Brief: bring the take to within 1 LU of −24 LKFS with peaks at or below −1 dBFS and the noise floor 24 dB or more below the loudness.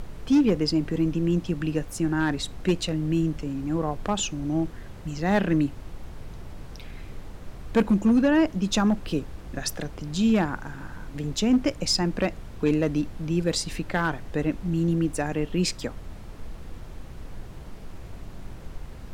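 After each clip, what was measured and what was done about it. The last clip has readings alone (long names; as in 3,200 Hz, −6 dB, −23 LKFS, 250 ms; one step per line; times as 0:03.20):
share of clipped samples 0.5%; peaks flattened at −14.0 dBFS; background noise floor −41 dBFS; target noise floor −50 dBFS; integrated loudness −25.5 LKFS; sample peak −14.0 dBFS; target loudness −24.0 LKFS
→ clipped peaks rebuilt −14 dBFS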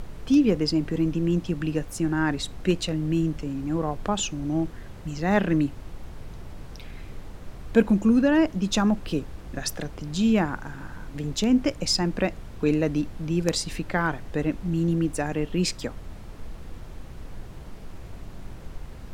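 share of clipped samples 0.0%; background noise floor −41 dBFS; target noise floor −50 dBFS
→ noise reduction from a noise print 9 dB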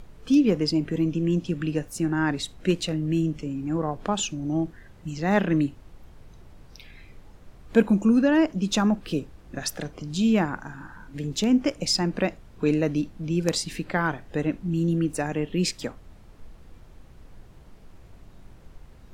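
background noise floor −50 dBFS; integrated loudness −25.5 LKFS; sample peak −5.0 dBFS; target loudness −24.0 LKFS
→ level +1.5 dB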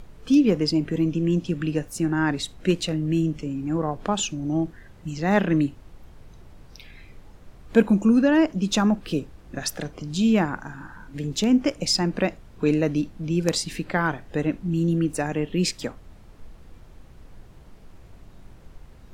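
integrated loudness −24.0 LKFS; sample peak −3.5 dBFS; background noise floor −48 dBFS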